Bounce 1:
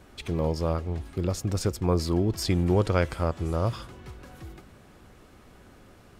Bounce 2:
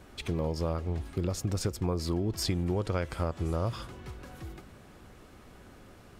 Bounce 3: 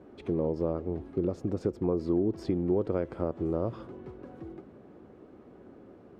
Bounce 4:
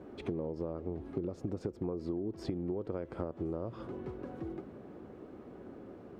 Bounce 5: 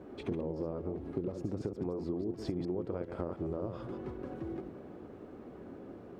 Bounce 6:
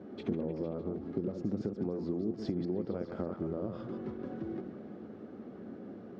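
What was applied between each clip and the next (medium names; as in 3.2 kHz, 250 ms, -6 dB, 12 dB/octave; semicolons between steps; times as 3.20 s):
compression 6:1, threshold -26 dBFS, peak gain reduction 8.5 dB
band-pass filter 350 Hz, Q 1.3; trim +6.5 dB
compression 10:1, threshold -35 dBFS, peak gain reduction 13 dB; trim +2.5 dB
chunks repeated in reverse 102 ms, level -5.5 dB
cabinet simulation 100–6000 Hz, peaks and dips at 210 Hz +9 dB, 990 Hz -6 dB, 2.5 kHz -4 dB; repeats whose band climbs or falls 152 ms, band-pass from 1.2 kHz, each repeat 0.7 oct, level -7 dB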